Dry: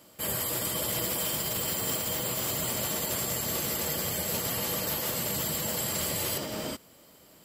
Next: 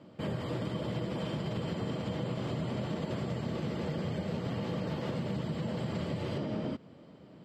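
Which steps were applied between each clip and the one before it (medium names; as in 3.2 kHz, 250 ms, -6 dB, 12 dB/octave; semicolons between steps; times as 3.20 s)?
Chebyshev band-pass 150–3800 Hz, order 2; tilt EQ -4 dB/octave; compression, threshold -31 dBFS, peak gain reduction 7 dB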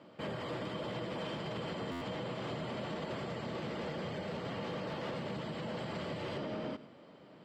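overdrive pedal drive 15 dB, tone 3.5 kHz, clips at -23 dBFS; on a send at -16 dB: reverberation RT60 0.40 s, pre-delay 82 ms; on the sum: buffer glitch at 1.91 s, samples 512, times 8; trim -6 dB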